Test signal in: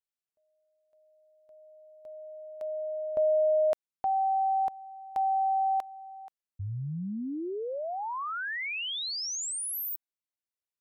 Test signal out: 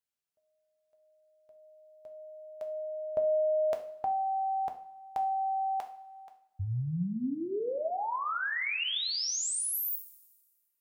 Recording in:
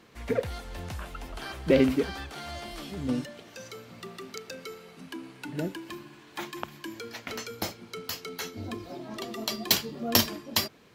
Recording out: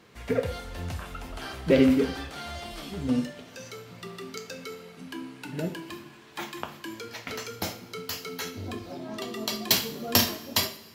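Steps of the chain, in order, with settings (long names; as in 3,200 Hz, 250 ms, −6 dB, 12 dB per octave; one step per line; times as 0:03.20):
coupled-rooms reverb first 0.43 s, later 1.6 s, from −18 dB, DRR 4 dB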